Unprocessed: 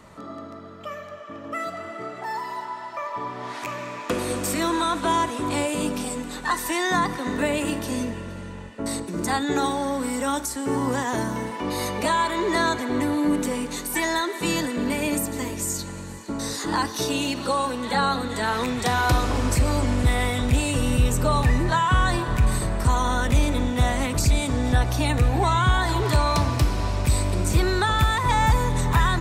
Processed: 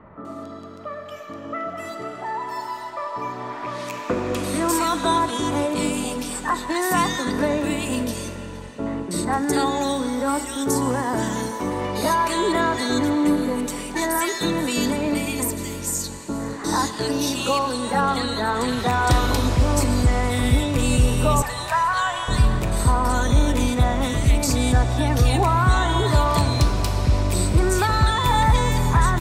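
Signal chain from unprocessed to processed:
0:21.42–0:22.28: high-pass filter 620 Hz 24 dB per octave
multiband delay without the direct sound lows, highs 250 ms, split 2,000 Hz
comb and all-pass reverb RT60 4 s, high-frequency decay 0.7×, pre-delay 65 ms, DRR 14.5 dB
level +2.5 dB

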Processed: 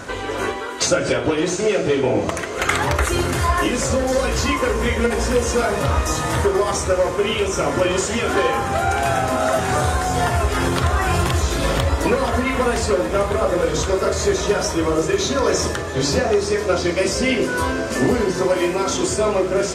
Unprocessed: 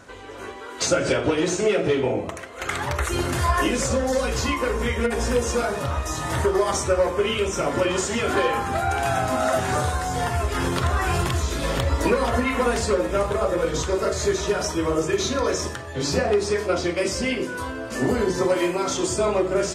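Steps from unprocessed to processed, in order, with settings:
speech leveller within 10 dB 0.5 s
on a send: feedback delay with all-pass diffusion 863 ms, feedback 73%, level −14.5 dB
on the sum: level +3.5 dB

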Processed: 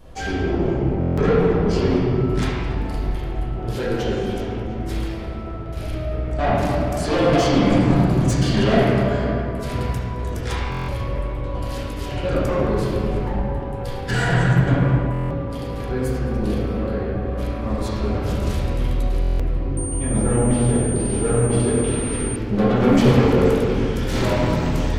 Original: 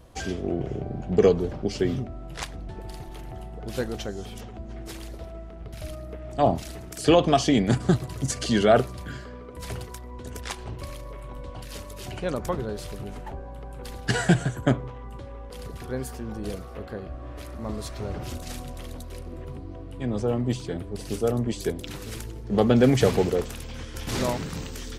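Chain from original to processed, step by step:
soft clipping −23 dBFS, distortion −6 dB
echo machine with several playback heads 72 ms, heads first and third, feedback 61%, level −22 dB
convolution reverb RT60 2.5 s, pre-delay 5 ms, DRR −9.5 dB
buffer that repeats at 0:00.99/0:10.70/0:15.12/0:19.21, samples 1,024, times 7
0:19.77–0:22.36: switching amplifier with a slow clock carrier 8,800 Hz

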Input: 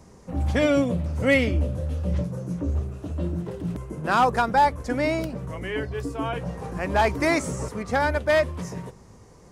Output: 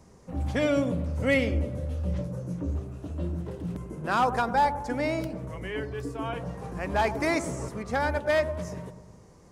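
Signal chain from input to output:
delay with a low-pass on its return 102 ms, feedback 55%, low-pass 1,000 Hz, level −10 dB
level −4.5 dB

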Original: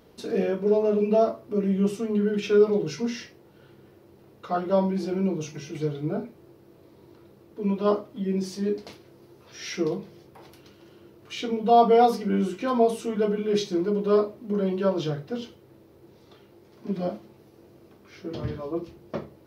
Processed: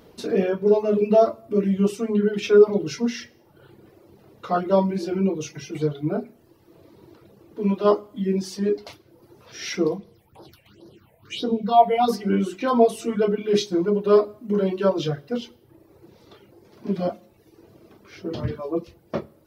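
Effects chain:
0:09.94–0:12.07: all-pass phaser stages 6, 3.5 Hz → 0.94 Hz, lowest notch 320–2,400 Hz
convolution reverb RT60 0.75 s, pre-delay 7 ms, DRR 11 dB
reverb reduction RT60 0.89 s
level +4.5 dB

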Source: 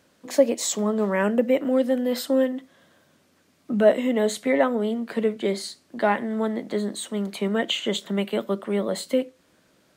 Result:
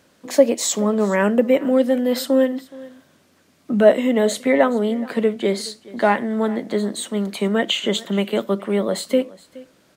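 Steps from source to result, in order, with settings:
single-tap delay 421 ms −21 dB
level +4.5 dB

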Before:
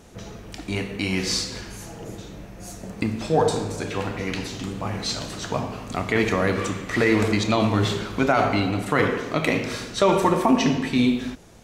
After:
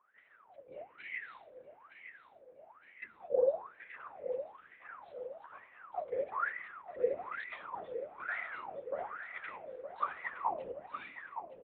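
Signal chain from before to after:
adaptive Wiener filter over 9 samples
spectral tilt +2 dB per octave
in parallel at −9.5 dB: bit reduction 7 bits
on the sum: linear-prediction vocoder at 8 kHz whisper
on a send: repeating echo 915 ms, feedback 48%, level −10 dB
on the sum: LFO wah 1.1 Hz 500–2,000 Hz, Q 21

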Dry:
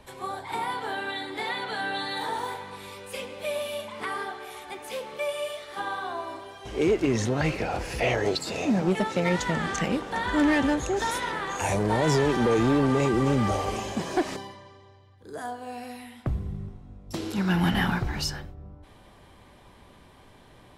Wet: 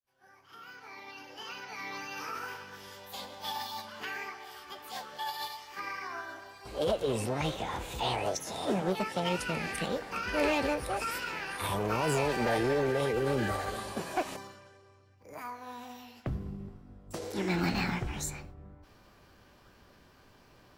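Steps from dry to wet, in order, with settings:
fade in at the beginning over 2.78 s
formants moved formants +6 semitones
level −6.5 dB

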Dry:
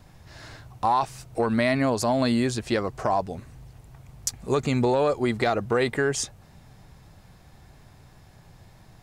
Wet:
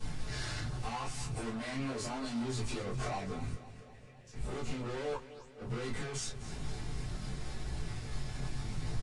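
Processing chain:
parametric band 850 Hz −6 dB 2.1 octaves
brickwall limiter −18.5 dBFS, peak gain reduction 8 dB
downward compressor 5 to 1, threshold −43 dBFS, peak gain reduction 17.5 dB
0:03.51–0:04.33: formant filter e
tube saturation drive 54 dB, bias 0.65
0:05.14–0:05.45: sound drawn into the spectrogram rise 920–8,700 Hz −43 dBFS
multi-voice chorus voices 2, 0.83 Hz, delay 20 ms, depth 2.5 ms
gate with flip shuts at −47 dBFS, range −40 dB
repeating echo 253 ms, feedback 59%, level −15 dB
convolution reverb, pre-delay 3 ms, DRR −9.5 dB
level +10 dB
Ogg Vorbis 48 kbit/s 22,050 Hz

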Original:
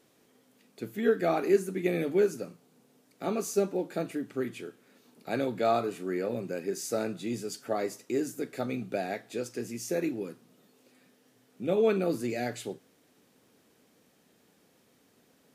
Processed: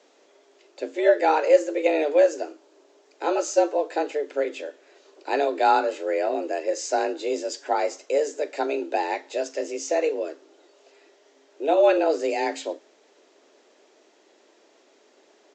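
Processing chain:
downsampling to 16,000 Hz
frequency shifter +150 Hz
level +7 dB

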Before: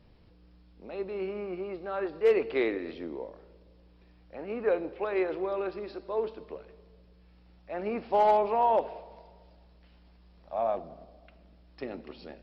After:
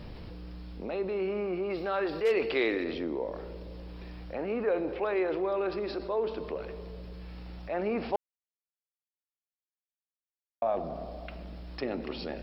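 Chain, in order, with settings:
0:01.70–0:02.84: high-shelf EQ 2,700 Hz +11.5 dB
0:08.16–0:10.62: silence
envelope flattener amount 50%
level −4.5 dB

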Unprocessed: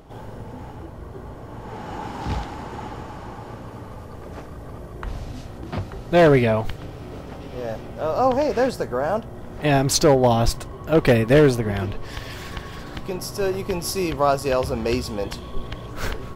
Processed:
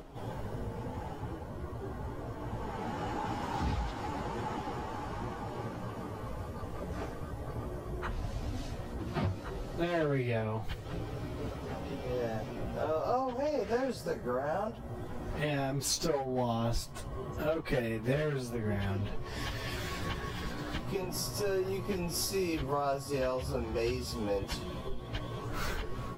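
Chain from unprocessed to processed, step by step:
downward compressor 4 to 1, threshold −28 dBFS, peak gain reduction 14 dB
time stretch by phase vocoder 1.6×

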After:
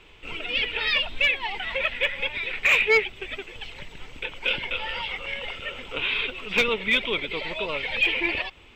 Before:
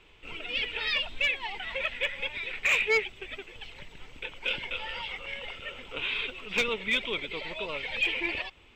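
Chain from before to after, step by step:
dynamic equaliser 7,200 Hz, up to −6 dB, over −49 dBFS, Q 1.2
level +6 dB

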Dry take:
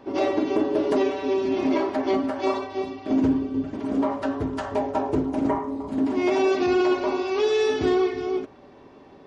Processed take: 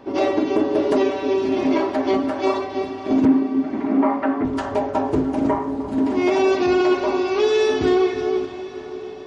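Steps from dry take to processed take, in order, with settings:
0:03.25–0:04.45: loudspeaker in its box 230–2,500 Hz, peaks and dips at 230 Hz +8 dB, 330 Hz +5 dB, 470 Hz −5 dB, 770 Hz +5 dB, 1,200 Hz +4 dB, 2,100 Hz +8 dB
feedback delay with all-pass diffusion 595 ms, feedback 55%, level −14 dB
level +3.5 dB

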